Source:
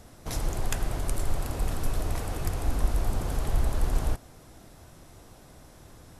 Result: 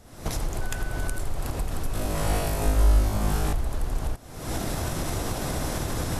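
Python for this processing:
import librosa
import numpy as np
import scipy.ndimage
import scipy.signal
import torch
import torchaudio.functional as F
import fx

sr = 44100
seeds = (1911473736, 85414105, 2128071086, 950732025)

y = fx.recorder_agc(x, sr, target_db=-16.5, rise_db_per_s=62.0, max_gain_db=30)
y = fx.dmg_tone(y, sr, hz=1500.0, level_db=-37.0, at=(0.6, 1.18), fade=0.02)
y = fx.room_flutter(y, sr, wall_m=3.3, rt60_s=0.88, at=(1.93, 3.53))
y = F.gain(torch.from_numpy(y), -3.0).numpy()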